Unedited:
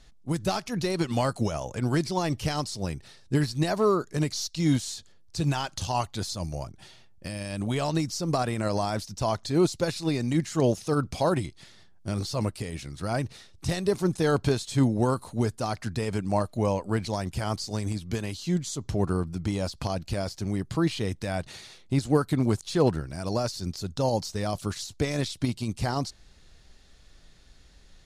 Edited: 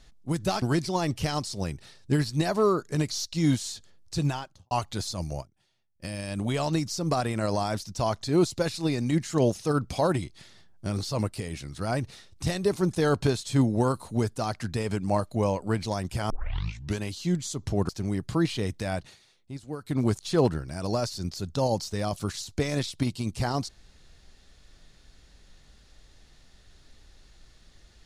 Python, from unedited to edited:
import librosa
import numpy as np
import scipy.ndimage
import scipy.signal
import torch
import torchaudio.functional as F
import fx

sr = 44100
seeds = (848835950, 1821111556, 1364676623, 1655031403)

y = fx.studio_fade_out(x, sr, start_s=5.4, length_s=0.53)
y = fx.edit(y, sr, fx.cut(start_s=0.62, length_s=1.22),
    fx.fade_down_up(start_s=6.62, length_s=0.65, db=-21.0, fade_s=0.26, curve='exp'),
    fx.tape_start(start_s=17.52, length_s=0.69),
    fx.cut(start_s=19.11, length_s=1.2),
    fx.fade_down_up(start_s=21.36, length_s=1.09, db=-14.0, fade_s=0.23), tone=tone)